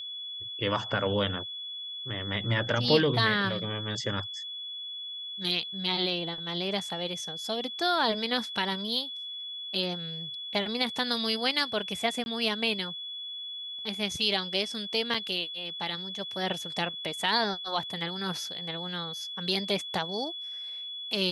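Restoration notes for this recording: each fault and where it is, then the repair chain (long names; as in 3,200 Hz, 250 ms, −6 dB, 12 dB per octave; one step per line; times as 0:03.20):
whistle 3,400 Hz −36 dBFS
0:12.24–0:12.26: drop-out 21 ms
0:15.14: drop-out 4.6 ms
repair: notch filter 3,400 Hz, Q 30
repair the gap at 0:12.24, 21 ms
repair the gap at 0:15.14, 4.6 ms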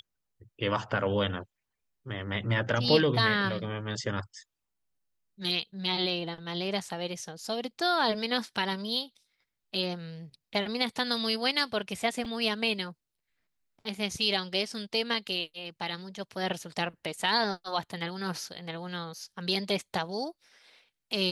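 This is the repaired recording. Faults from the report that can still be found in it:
none of them is left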